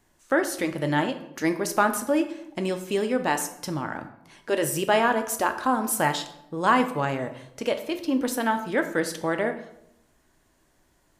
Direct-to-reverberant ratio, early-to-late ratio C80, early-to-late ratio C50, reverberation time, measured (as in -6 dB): 7.5 dB, 14.0 dB, 12.0 dB, 0.80 s